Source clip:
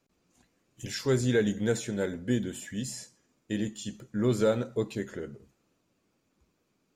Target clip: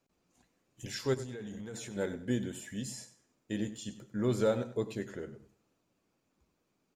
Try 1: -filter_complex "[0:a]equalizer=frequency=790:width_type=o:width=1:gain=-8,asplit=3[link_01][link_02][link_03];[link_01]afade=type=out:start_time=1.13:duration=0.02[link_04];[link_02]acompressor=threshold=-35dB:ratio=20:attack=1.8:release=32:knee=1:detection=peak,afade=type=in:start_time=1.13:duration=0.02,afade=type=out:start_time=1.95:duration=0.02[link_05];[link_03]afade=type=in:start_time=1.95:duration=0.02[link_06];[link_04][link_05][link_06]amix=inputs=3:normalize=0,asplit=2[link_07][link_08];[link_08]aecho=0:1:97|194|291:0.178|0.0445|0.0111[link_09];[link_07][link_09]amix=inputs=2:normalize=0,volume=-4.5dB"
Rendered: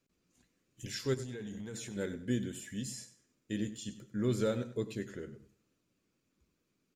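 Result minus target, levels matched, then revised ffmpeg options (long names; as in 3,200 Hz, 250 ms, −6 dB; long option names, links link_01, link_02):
1,000 Hz band −3.5 dB
-filter_complex "[0:a]equalizer=frequency=790:width_type=o:width=1:gain=3,asplit=3[link_01][link_02][link_03];[link_01]afade=type=out:start_time=1.13:duration=0.02[link_04];[link_02]acompressor=threshold=-35dB:ratio=20:attack=1.8:release=32:knee=1:detection=peak,afade=type=in:start_time=1.13:duration=0.02,afade=type=out:start_time=1.95:duration=0.02[link_05];[link_03]afade=type=in:start_time=1.95:duration=0.02[link_06];[link_04][link_05][link_06]amix=inputs=3:normalize=0,asplit=2[link_07][link_08];[link_08]aecho=0:1:97|194|291:0.178|0.0445|0.0111[link_09];[link_07][link_09]amix=inputs=2:normalize=0,volume=-4.5dB"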